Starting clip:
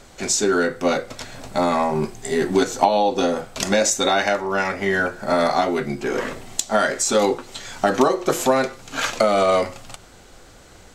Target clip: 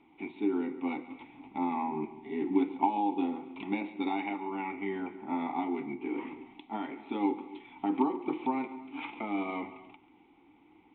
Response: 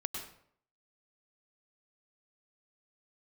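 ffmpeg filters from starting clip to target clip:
-filter_complex "[0:a]aresample=8000,aresample=44100,asplit=3[s0][s1][s2];[s0]bandpass=f=300:t=q:w=8,volume=1[s3];[s1]bandpass=f=870:t=q:w=8,volume=0.501[s4];[s2]bandpass=f=2240:t=q:w=8,volume=0.355[s5];[s3][s4][s5]amix=inputs=3:normalize=0,asplit=2[s6][s7];[1:a]atrim=start_sample=2205,afade=t=out:st=0.22:d=0.01,atrim=end_sample=10143,adelay=139[s8];[s7][s8]afir=irnorm=-1:irlink=0,volume=0.178[s9];[s6][s9]amix=inputs=2:normalize=0"

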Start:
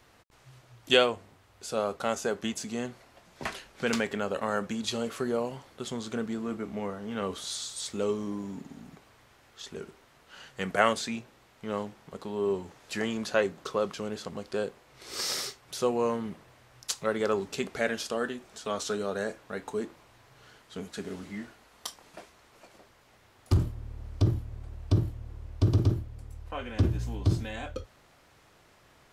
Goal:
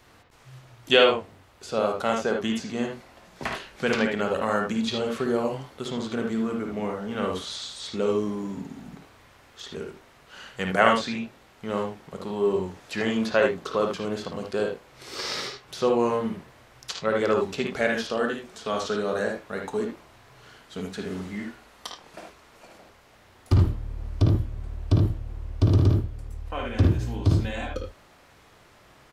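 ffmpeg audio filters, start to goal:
-filter_complex "[0:a]acrossover=split=4800[s0][s1];[s0]aecho=1:1:54|76:0.562|0.531[s2];[s1]acompressor=threshold=0.00251:ratio=6[s3];[s2][s3]amix=inputs=2:normalize=0,volume=1.5"

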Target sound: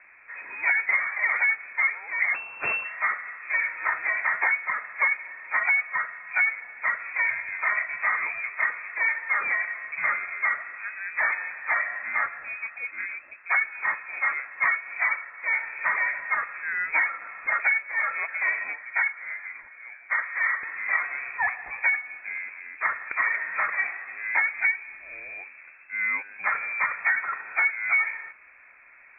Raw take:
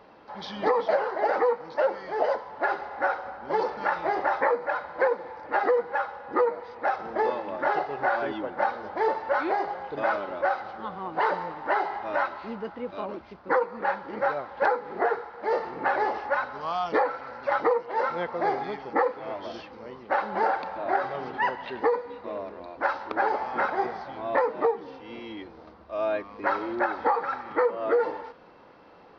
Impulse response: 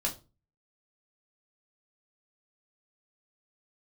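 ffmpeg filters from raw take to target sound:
-filter_complex "[0:a]asettb=1/sr,asplit=3[s0][s1][s2];[s0]atrim=end=2.344[s3];[s1]atrim=start=2.34:end=2.85,asetpts=PTS-STARTPTS,afade=t=in:d=0.004:c=qsin,afade=t=out:st=0.506:d=0.004:c=qsin,aeval=exprs='abs(val(0))':c=same[s4];[s2]atrim=start=2.846[s5];[s3][s4]acrossfade=d=0.004:c1=hsin:c2=qsin[s6];[s6][s5]acrossfade=d=0.004:c1=qsin:c2=hsin,asettb=1/sr,asplit=3[s7][s8][s9];[s7]atrim=end=18.734[s10];[s8]atrim=start=18.73:end=20.63,asetpts=PTS-STARTPTS,afade=t=in:d=0.004:c=qsin,afade=t=out:st=1.896:d=0.004:c=qsin,acrossover=split=320 2100:gain=0.0794 1 0.0708[s11][s12][s13];[s11][s12][s13]amix=inputs=3:normalize=0[s14];[s9]atrim=start=20.626[s15];[s10][s14]acrossfade=d=0.004:c1=hsin:c2=qsin[s16];[s16][s15]acrossfade=d=0.004:c1=qsin:c2=hsin,lowpass=f=2300:t=q:w=0.5098,lowpass=f=2300:t=q:w=0.6013,lowpass=f=2300:t=q:w=0.9,lowpass=f=2300:t=q:w=2.563,afreqshift=-2700"

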